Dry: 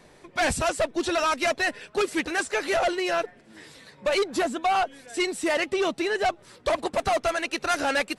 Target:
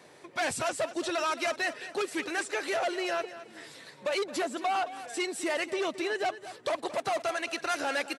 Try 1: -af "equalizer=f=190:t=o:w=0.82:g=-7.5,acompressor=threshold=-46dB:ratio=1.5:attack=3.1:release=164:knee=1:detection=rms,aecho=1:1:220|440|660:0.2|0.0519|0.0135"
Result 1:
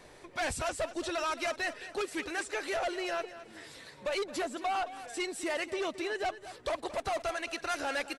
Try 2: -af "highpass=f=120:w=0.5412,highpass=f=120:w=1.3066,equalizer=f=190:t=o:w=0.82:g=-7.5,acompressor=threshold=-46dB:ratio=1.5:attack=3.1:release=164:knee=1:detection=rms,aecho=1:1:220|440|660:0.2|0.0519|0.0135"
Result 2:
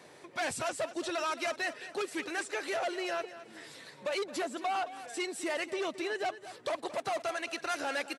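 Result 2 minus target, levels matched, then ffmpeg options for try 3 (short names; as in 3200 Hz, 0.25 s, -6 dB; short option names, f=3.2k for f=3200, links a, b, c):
compressor: peak gain reduction +3.5 dB
-af "highpass=f=120:w=0.5412,highpass=f=120:w=1.3066,equalizer=f=190:t=o:w=0.82:g=-7.5,acompressor=threshold=-35.5dB:ratio=1.5:attack=3.1:release=164:knee=1:detection=rms,aecho=1:1:220|440|660:0.2|0.0519|0.0135"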